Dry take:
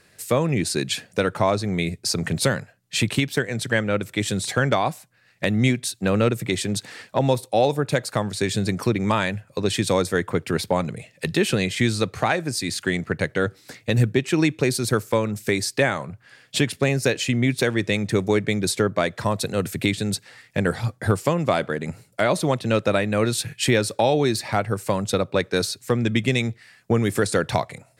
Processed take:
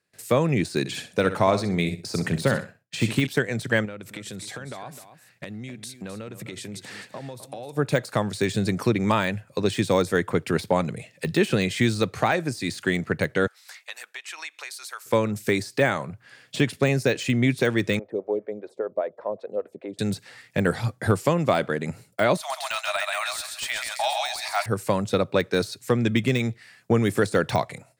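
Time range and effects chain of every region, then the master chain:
0.79–3.27 s: feedback delay 63 ms, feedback 26%, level -11.5 dB + tape noise reduction on one side only decoder only
3.85–7.77 s: compression 16:1, threshold -32 dBFS + delay 258 ms -12 dB
13.47–15.06 s: high-pass 880 Hz 24 dB/octave + compression 2:1, threshold -38 dBFS
17.99–19.99 s: band-pass filter 540 Hz, Q 2.4 + lamp-driven phase shifter 5.1 Hz
22.37–24.66 s: Chebyshev high-pass 620 Hz, order 8 + tilt EQ +3 dB/octave + feedback delay 131 ms, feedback 31%, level -5 dB
whole clip: high-pass 89 Hz; gate with hold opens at -45 dBFS; de-esser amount 65%

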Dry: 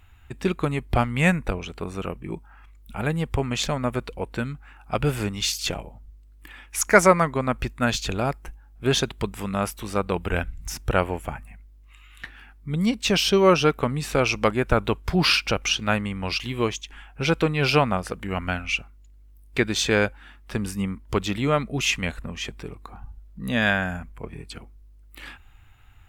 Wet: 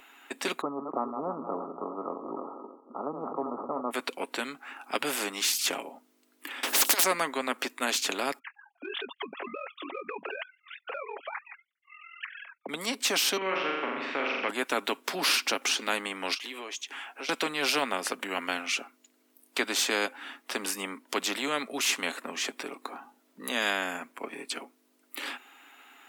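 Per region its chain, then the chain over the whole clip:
0.61–3.91 s: backward echo that repeats 157 ms, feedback 54%, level -12 dB + Chebyshev low-pass 1.3 kHz, order 10 + decay stretcher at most 68 dB/s
6.63–7.04 s: compressor with a negative ratio -19 dBFS, ratio -0.5 + spectrum-flattening compressor 10:1
8.39–12.69 s: formants replaced by sine waves + compression 4:1, threshold -31 dBFS + ring modulator 21 Hz
13.37–14.49 s: four-pole ladder low-pass 2.5 kHz, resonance 45% + flutter echo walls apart 7.2 m, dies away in 0.77 s + three bands compressed up and down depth 40%
16.34–17.29 s: high-pass 340 Hz + compression 5:1, threshold -40 dBFS
whole clip: steep high-pass 250 Hz 48 dB/octave; comb 7.3 ms, depth 34%; spectrum-flattening compressor 2:1; trim -1 dB

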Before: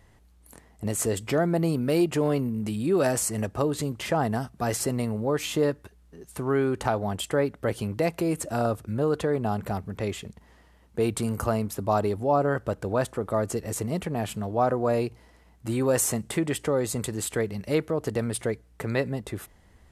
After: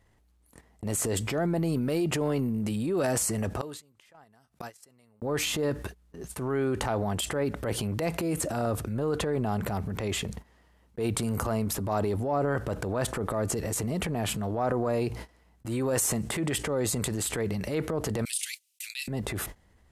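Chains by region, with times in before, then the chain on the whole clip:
3.61–5.22 s: high-pass 43 Hz + tilt shelf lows -5.5 dB, about 760 Hz + inverted gate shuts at -25 dBFS, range -26 dB
18.25–19.08 s: elliptic high-pass 2.6 kHz, stop band 80 dB + treble shelf 4.3 kHz +10 dB
whole clip: gate -45 dBFS, range -43 dB; transient shaper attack -8 dB, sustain +6 dB; level flattener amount 50%; trim -4.5 dB

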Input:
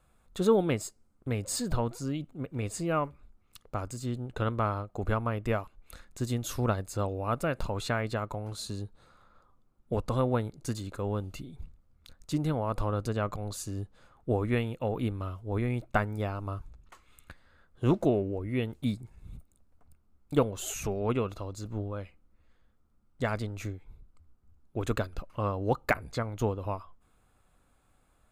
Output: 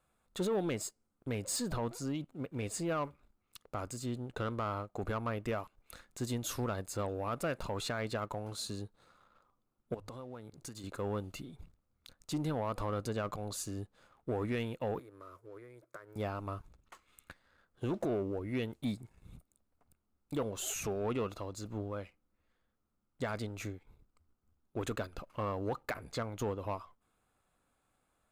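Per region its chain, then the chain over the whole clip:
9.94–10.84 s: hum notches 50/100 Hz + compression 10:1, threshold -39 dBFS
14.99–16.16 s: high-pass 130 Hz 24 dB/octave + compression 5:1, threshold -42 dBFS + static phaser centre 790 Hz, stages 6
whole clip: bass shelf 110 Hz -11 dB; peak limiter -22 dBFS; waveshaping leveller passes 1; trim -4.5 dB

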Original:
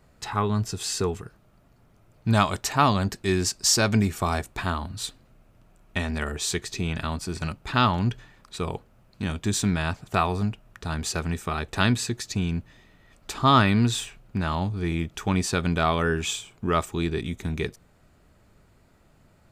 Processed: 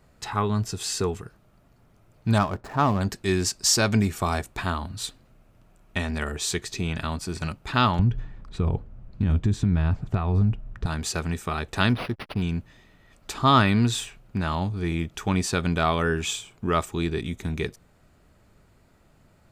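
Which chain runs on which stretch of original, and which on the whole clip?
2.38–3.01 s: median filter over 15 samples + treble shelf 2.3 kHz -9.5 dB
7.99–10.86 s: compression 4:1, threshold -28 dBFS + RIAA curve playback
11.89–12.42 s: hysteresis with a dead band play -34.5 dBFS + treble shelf 11 kHz +2.5 dB + decimation joined by straight lines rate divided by 6×
whole clip: none

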